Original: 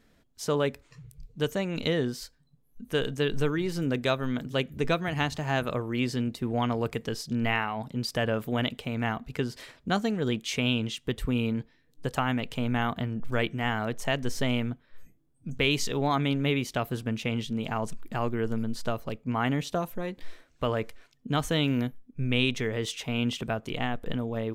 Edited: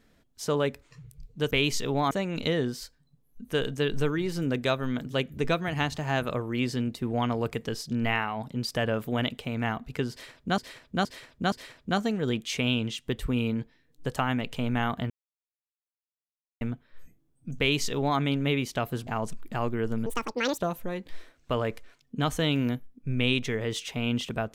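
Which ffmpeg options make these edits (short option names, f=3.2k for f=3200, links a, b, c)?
-filter_complex "[0:a]asplit=11[a][b][c][d][e][f][g][h][i][j][k];[a]atrim=end=1.512[l];[b]atrim=start=15.578:end=16.182[m];[c]atrim=start=1.508:end=9.982[n];[d]atrim=start=9.508:end=9.982[o];[e]atrim=start=9.508:end=9.982[p];[f]atrim=start=9.508:end=13.09,asetpts=PTS-STARTPTS,afade=t=out:st=3.578:d=0.004:c=hsin[q];[g]atrim=start=13.09:end=14.6,asetpts=PTS-STARTPTS,volume=0[r];[h]atrim=start=14.6:end=17.062,asetpts=PTS-STARTPTS,afade=t=in:d=0.004:c=hsin[s];[i]atrim=start=17.668:end=18.664[t];[j]atrim=start=18.66:end=19.7,asetpts=PTS-STARTPTS,asetrate=88200,aresample=44100[u];[k]atrim=start=19.696[v];[l][m]acrossfade=d=0.004:c1=hsin:c2=hsin[w];[w][n]acrossfade=d=0.004:c1=hsin:c2=hsin[x];[x][o]acrossfade=d=0.004:c1=hsin:c2=hsin[y];[y][p]acrossfade=d=0.004:c1=hsin:c2=hsin[z];[q][r][s]concat=n=3:v=0:a=1[aa];[z][aa]acrossfade=d=0.004:c1=hsin:c2=hsin[ab];[ab][t]acrossfade=d=0.004:c1=hsin:c2=hsin[ac];[ac][u]acrossfade=d=0.004:c1=hsin:c2=hsin[ad];[ad][v]acrossfade=d=0.004:c1=hsin:c2=hsin"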